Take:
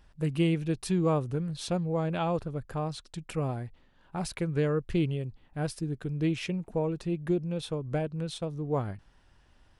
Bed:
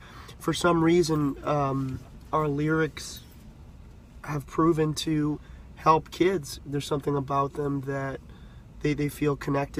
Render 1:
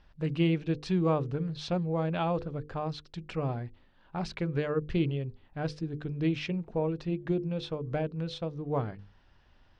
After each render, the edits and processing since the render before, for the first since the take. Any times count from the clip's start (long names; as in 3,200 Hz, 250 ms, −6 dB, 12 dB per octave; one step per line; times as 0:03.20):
low-pass filter 5,200 Hz 24 dB per octave
mains-hum notches 50/100/150/200/250/300/350/400/450/500 Hz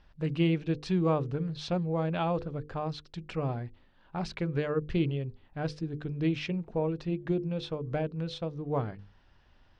no processing that can be heard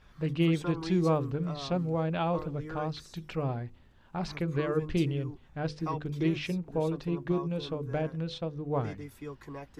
mix in bed −16 dB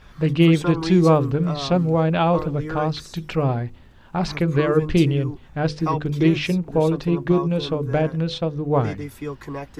level +11 dB